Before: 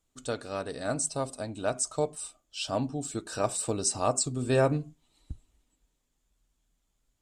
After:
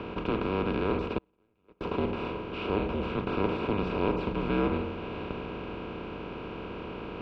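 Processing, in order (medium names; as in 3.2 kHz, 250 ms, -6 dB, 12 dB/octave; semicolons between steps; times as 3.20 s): spectral levelling over time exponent 0.2; 1.18–1.81 s: gate -14 dBFS, range -41 dB; mistuned SSB -210 Hz 270–3200 Hz; trim -6 dB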